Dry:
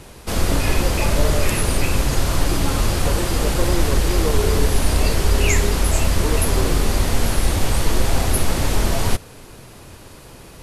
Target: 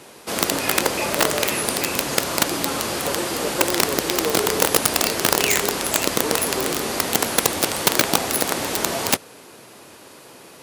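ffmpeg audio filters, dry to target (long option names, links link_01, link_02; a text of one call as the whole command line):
ffmpeg -i in.wav -af "aeval=exprs='(mod(2.37*val(0)+1,2)-1)/2.37':channel_layout=same,highpass=260" out.wav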